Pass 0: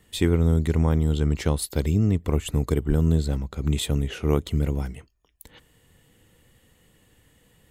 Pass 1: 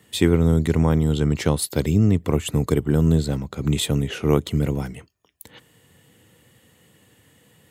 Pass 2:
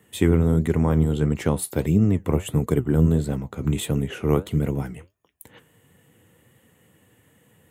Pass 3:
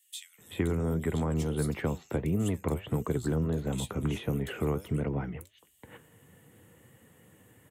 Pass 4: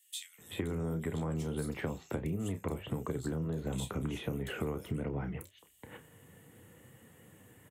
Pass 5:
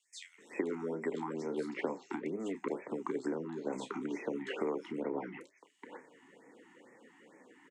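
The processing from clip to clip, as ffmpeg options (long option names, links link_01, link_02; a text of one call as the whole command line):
ffmpeg -i in.wav -af "highpass=frequency=91:width=0.5412,highpass=frequency=91:width=1.3066,volume=4.5dB" out.wav
ffmpeg -i in.wav -af "equalizer=frequency=4600:width_type=o:width=0.98:gain=-11.5,flanger=delay=3.9:depth=9.1:regen=69:speed=1.5:shape=triangular,volume=3dB" out.wav
ffmpeg -i in.wav -filter_complex "[0:a]acrossover=split=170|450|7400[link_01][link_02][link_03][link_04];[link_01]acompressor=threshold=-33dB:ratio=4[link_05];[link_02]acompressor=threshold=-35dB:ratio=4[link_06];[link_03]acompressor=threshold=-35dB:ratio=4[link_07];[link_04]acompressor=threshold=-51dB:ratio=4[link_08];[link_05][link_06][link_07][link_08]amix=inputs=4:normalize=0,acrossover=split=3100[link_09][link_10];[link_09]adelay=380[link_11];[link_11][link_10]amix=inputs=2:normalize=0" out.wav
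ffmpeg -i in.wav -filter_complex "[0:a]asplit=2[link_01][link_02];[link_02]adelay=31,volume=-10dB[link_03];[link_01][link_03]amix=inputs=2:normalize=0,acompressor=threshold=-32dB:ratio=6" out.wav
ffmpeg -i in.wav -af "highpass=frequency=250:width=0.5412,highpass=frequency=250:width=1.3066,equalizer=frequency=270:width_type=q:width=4:gain=4,equalizer=frequency=390:width_type=q:width=4:gain=4,equalizer=frequency=550:width_type=q:width=4:gain=3,equalizer=frequency=920:width_type=q:width=4:gain=7,equalizer=frequency=2000:width_type=q:width=4:gain=5,equalizer=frequency=3600:width_type=q:width=4:gain=-5,lowpass=frequency=6300:width=0.5412,lowpass=frequency=6300:width=1.3066,afftfilt=real='re*(1-between(b*sr/1024,490*pow(3700/490,0.5+0.5*sin(2*PI*2.2*pts/sr))/1.41,490*pow(3700/490,0.5+0.5*sin(2*PI*2.2*pts/sr))*1.41))':imag='im*(1-between(b*sr/1024,490*pow(3700/490,0.5+0.5*sin(2*PI*2.2*pts/sr))/1.41,490*pow(3700/490,0.5+0.5*sin(2*PI*2.2*pts/sr))*1.41))':win_size=1024:overlap=0.75" out.wav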